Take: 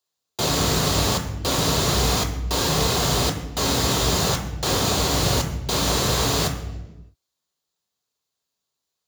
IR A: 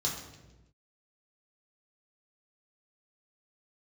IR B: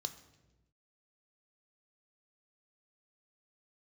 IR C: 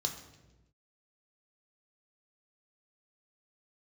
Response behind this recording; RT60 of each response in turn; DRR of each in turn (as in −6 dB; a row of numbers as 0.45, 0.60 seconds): C; 1.1, 1.1, 1.1 seconds; −3.5, 8.0, 3.0 decibels